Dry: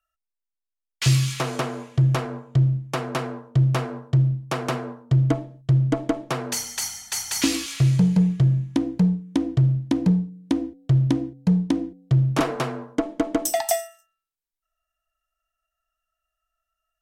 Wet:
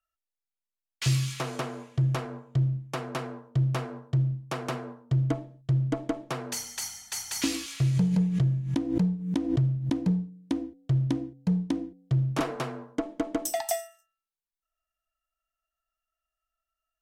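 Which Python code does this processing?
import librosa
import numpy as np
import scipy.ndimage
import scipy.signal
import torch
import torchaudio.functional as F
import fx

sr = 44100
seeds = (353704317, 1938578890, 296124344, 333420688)

y = fx.pre_swell(x, sr, db_per_s=72.0, at=(7.91, 9.93))
y = y * librosa.db_to_amplitude(-6.5)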